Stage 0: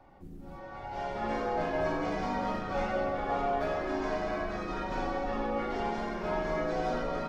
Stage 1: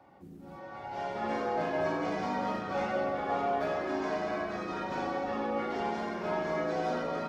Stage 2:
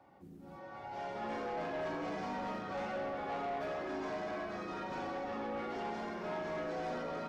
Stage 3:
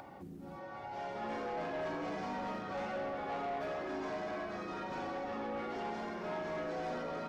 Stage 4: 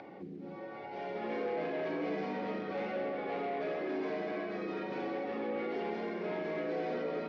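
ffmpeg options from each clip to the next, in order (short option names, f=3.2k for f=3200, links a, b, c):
-af "highpass=120"
-af "asoftclip=type=tanh:threshold=-29.5dB,volume=-4dB"
-af "acompressor=mode=upward:threshold=-41dB:ratio=2.5"
-af "highpass=150,equalizer=f=190:t=q:w=4:g=5,equalizer=f=320:t=q:w=4:g=6,equalizer=f=450:t=q:w=4:g=10,equalizer=f=930:t=q:w=4:g=-4,equalizer=f=1.3k:t=q:w=4:g=-4,equalizer=f=2.2k:t=q:w=4:g=6,lowpass=f=4.8k:w=0.5412,lowpass=f=4.8k:w=1.3066"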